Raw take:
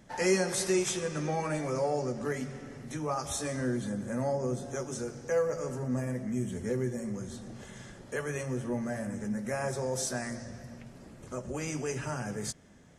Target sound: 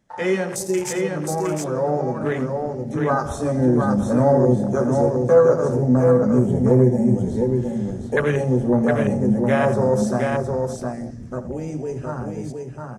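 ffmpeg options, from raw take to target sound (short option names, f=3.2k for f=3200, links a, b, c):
-af "afwtdn=0.0141,dynaudnorm=f=520:g=11:m=9.5dB,aecho=1:1:83|713:0.188|0.631,volume=5.5dB"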